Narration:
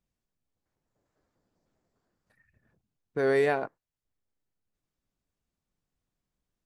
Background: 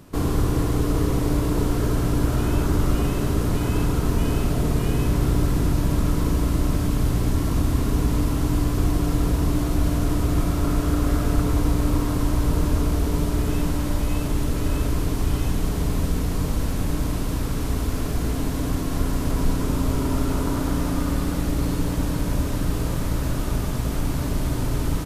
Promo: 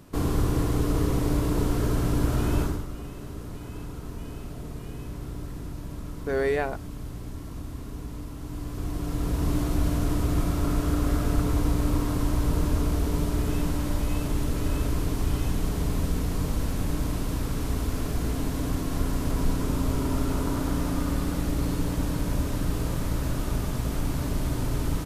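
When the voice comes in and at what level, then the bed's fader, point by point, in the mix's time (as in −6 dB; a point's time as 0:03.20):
3.10 s, −1.0 dB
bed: 0:02.62 −3 dB
0:02.87 −15.5 dB
0:08.38 −15.5 dB
0:09.52 −3.5 dB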